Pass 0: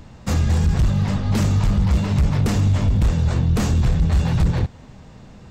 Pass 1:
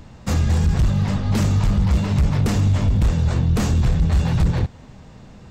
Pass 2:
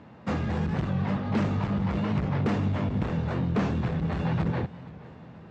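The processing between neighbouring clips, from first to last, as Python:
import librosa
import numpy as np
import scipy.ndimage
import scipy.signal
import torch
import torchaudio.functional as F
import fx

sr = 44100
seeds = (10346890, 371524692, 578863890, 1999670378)

y1 = x
y2 = fx.bandpass_edges(y1, sr, low_hz=170.0, high_hz=2300.0)
y2 = fx.echo_feedback(y2, sr, ms=481, feedback_pct=53, wet_db=-20.0)
y2 = fx.record_warp(y2, sr, rpm=45.0, depth_cents=100.0)
y2 = y2 * 10.0 ** (-2.0 / 20.0)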